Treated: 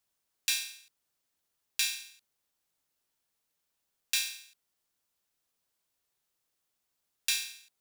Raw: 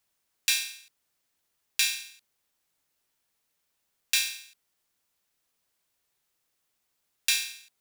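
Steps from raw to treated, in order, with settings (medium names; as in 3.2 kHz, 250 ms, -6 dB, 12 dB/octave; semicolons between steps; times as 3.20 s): peaking EQ 2.1 kHz -2.5 dB; trim -4 dB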